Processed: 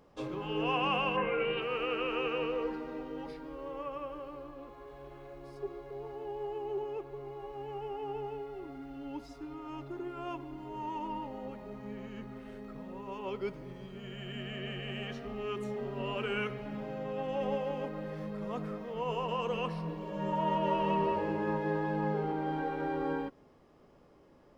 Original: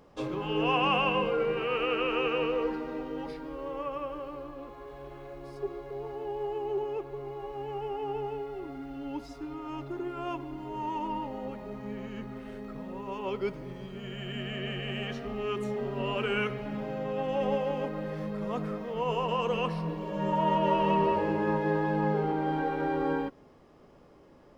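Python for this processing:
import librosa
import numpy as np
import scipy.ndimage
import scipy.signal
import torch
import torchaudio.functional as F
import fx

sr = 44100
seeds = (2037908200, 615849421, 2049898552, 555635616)

y = fx.lowpass_res(x, sr, hz=fx.line((1.16, 1700.0), (1.6, 3500.0)), q=4.9, at=(1.16, 1.6), fade=0.02)
y = y * librosa.db_to_amplitude(-4.5)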